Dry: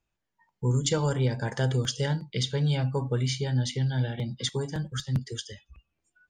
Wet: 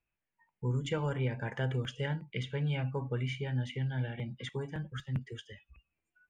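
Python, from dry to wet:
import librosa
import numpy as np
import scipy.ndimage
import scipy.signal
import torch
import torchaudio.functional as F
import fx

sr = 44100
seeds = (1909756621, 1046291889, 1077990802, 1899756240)

y = fx.high_shelf_res(x, sr, hz=3400.0, db=-10.5, q=3.0)
y = F.gain(torch.from_numpy(y), -7.0).numpy()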